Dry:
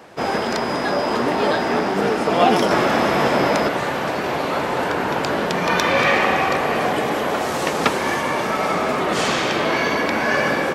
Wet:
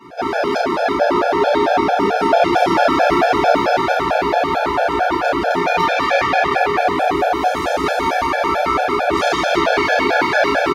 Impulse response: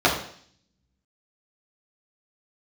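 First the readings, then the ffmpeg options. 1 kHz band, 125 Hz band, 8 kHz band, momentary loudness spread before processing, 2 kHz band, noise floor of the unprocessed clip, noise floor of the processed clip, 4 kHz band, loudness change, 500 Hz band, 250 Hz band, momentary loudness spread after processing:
+5.0 dB, −2.5 dB, −3.0 dB, 6 LU, +2.0 dB, −23 dBFS, −20 dBFS, +0.5 dB, +3.0 dB, +3.5 dB, +1.5 dB, 4 LU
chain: -filter_complex "[0:a]highshelf=frequency=9100:gain=9,aecho=1:1:172|344|516|688|860|1032|1204:0.355|0.206|0.119|0.0692|0.0402|0.0233|0.0135,acrossover=split=170[link_01][link_02];[link_01]aeval=exprs='(mod(79.4*val(0)+1,2)-1)/79.4':channel_layout=same[link_03];[link_02]dynaudnorm=framelen=350:gausssize=9:maxgain=11.5dB[link_04];[link_03][link_04]amix=inputs=2:normalize=0,asubboost=boost=8.5:cutoff=62,asoftclip=type=tanh:threshold=-17.5dB,asplit=2[link_05][link_06];[link_06]adelay=34,volume=-6dB[link_07];[link_05][link_07]amix=inputs=2:normalize=0[link_08];[1:a]atrim=start_sample=2205,atrim=end_sample=3528[link_09];[link_08][link_09]afir=irnorm=-1:irlink=0,afftfilt=real='re*gt(sin(2*PI*4.5*pts/sr)*(1-2*mod(floor(b*sr/1024/450),2)),0)':imag='im*gt(sin(2*PI*4.5*pts/sr)*(1-2*mod(floor(b*sr/1024/450),2)),0)':win_size=1024:overlap=0.75,volume=-12.5dB"

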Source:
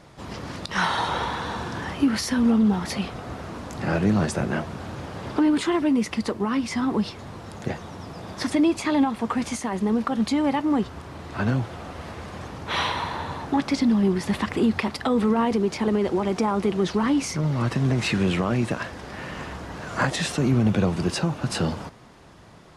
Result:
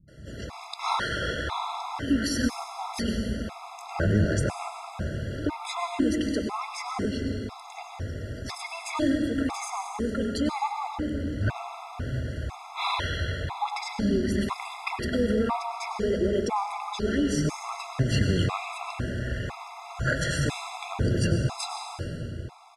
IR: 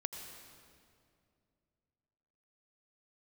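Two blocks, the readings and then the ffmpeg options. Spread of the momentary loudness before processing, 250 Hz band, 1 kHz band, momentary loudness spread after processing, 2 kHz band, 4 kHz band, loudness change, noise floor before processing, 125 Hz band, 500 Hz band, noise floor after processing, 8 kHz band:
14 LU, −6.5 dB, −2.5 dB, 11 LU, −2.5 dB, −2.5 dB, −5.0 dB, −41 dBFS, −2.0 dB, −3.5 dB, −43 dBFS, −2.5 dB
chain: -filter_complex "[0:a]asubboost=boost=4:cutoff=91,acrossover=split=190[link_01][link_02];[link_02]adelay=80[link_03];[link_01][link_03]amix=inputs=2:normalize=0[link_04];[1:a]atrim=start_sample=2205,asetrate=36603,aresample=44100[link_05];[link_04][link_05]afir=irnorm=-1:irlink=0,afftfilt=real='re*gt(sin(2*PI*1*pts/sr)*(1-2*mod(floor(b*sr/1024/680),2)),0)':imag='im*gt(sin(2*PI*1*pts/sr)*(1-2*mod(floor(b*sr/1024/680),2)),0)':win_size=1024:overlap=0.75"

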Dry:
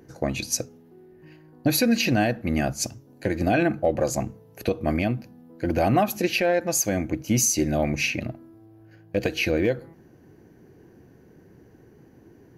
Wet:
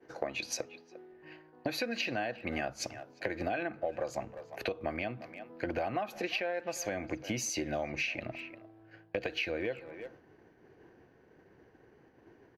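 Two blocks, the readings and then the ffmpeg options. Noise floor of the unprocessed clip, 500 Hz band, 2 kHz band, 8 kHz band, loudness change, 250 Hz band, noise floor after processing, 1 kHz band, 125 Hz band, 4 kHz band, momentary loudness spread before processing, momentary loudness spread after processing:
−53 dBFS, −10.5 dB, −7.5 dB, −15.0 dB, −12.0 dB, −15.5 dB, −63 dBFS, −10.0 dB, −18.0 dB, −9.0 dB, 10 LU, 14 LU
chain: -filter_complex "[0:a]acrossover=split=360 4200:gain=0.1 1 0.112[link_01][link_02][link_03];[link_01][link_02][link_03]amix=inputs=3:normalize=0,asplit=2[link_04][link_05];[link_05]adelay=350,highpass=300,lowpass=3400,asoftclip=type=hard:threshold=-19.5dB,volume=-20dB[link_06];[link_04][link_06]amix=inputs=2:normalize=0,asubboost=boost=2.5:cutoff=190,acompressor=threshold=-36dB:ratio=6,agate=range=-33dB:threshold=-54dB:ratio=3:detection=peak,volume=4dB"

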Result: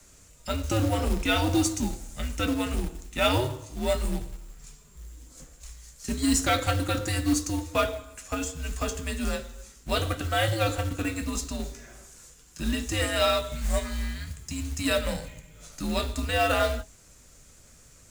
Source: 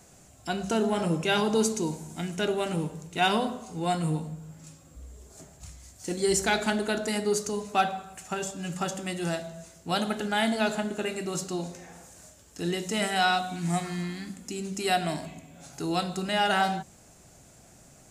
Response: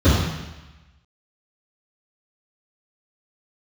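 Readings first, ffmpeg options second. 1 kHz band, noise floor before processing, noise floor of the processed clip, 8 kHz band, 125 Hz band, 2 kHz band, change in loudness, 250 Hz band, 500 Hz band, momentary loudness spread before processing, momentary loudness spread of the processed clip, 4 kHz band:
−3.0 dB, −55 dBFS, −54 dBFS, +1.5 dB, +4.0 dB, −0.5 dB, +0.5 dB, +0.5 dB, 0.0 dB, 19 LU, 20 LU, +0.5 dB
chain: -filter_complex "[0:a]flanger=delay=9.8:depth=1.7:regen=-55:speed=0.26:shape=triangular,acrossover=split=280|880|2900[link_01][link_02][link_03][link_04];[link_02]adynamicsmooth=sensitivity=6:basefreq=620[link_05];[link_01][link_05][link_03][link_04]amix=inputs=4:normalize=0,acrusher=bits=4:mode=log:mix=0:aa=0.000001,afreqshift=-120,volume=5.5dB"

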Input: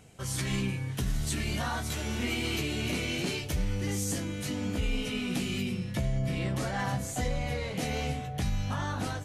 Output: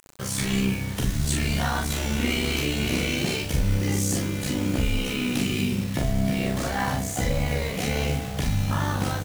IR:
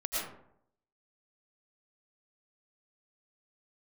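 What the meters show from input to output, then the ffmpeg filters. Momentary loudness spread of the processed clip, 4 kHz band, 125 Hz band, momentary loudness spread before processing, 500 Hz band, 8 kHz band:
2 LU, +6.0 dB, +6.0 dB, 2 LU, +6.0 dB, +6.5 dB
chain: -filter_complex "[0:a]tremolo=f=65:d=0.824,acrusher=bits=7:mix=0:aa=0.000001,asplit=2[link_01][link_02];[link_02]adelay=41,volume=-3.5dB[link_03];[link_01][link_03]amix=inputs=2:normalize=0,volume=8dB"

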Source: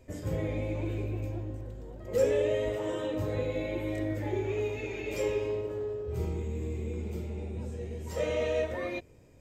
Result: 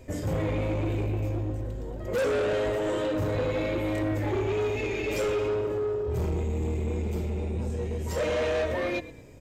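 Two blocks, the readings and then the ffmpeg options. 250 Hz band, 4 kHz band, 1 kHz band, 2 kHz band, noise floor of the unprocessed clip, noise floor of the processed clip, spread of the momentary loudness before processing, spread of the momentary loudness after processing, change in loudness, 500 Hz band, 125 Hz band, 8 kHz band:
+5.0 dB, +6.0 dB, +8.0 dB, +6.0 dB, −52 dBFS, −41 dBFS, 9 LU, 5 LU, +4.0 dB, +3.5 dB, +5.0 dB, +4.5 dB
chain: -filter_complex "[0:a]asplit=2[link_01][link_02];[link_02]asplit=3[link_03][link_04][link_05];[link_03]adelay=109,afreqshift=-35,volume=-18.5dB[link_06];[link_04]adelay=218,afreqshift=-70,volume=-27.1dB[link_07];[link_05]adelay=327,afreqshift=-105,volume=-35.8dB[link_08];[link_06][link_07][link_08]amix=inputs=3:normalize=0[link_09];[link_01][link_09]amix=inputs=2:normalize=0,asoftclip=type=tanh:threshold=-32dB,volume=8.5dB"

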